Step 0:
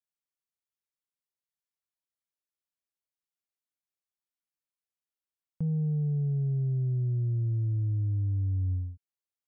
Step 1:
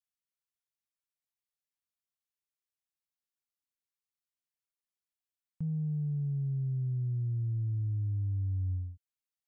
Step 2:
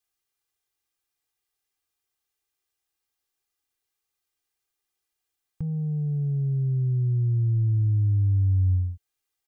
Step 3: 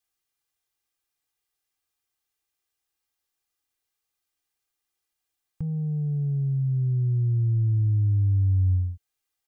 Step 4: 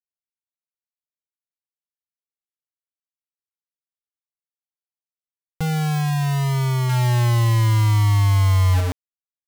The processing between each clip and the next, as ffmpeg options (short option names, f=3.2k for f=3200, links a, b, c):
-af "equalizer=f=510:t=o:w=1.4:g=-12,volume=-3dB"
-af "aecho=1:1:2.5:0.8,volume=8.5dB"
-af "bandreject=f=400:w=12"
-af "acrusher=bits=4:mix=0:aa=0.000001,volume=5dB"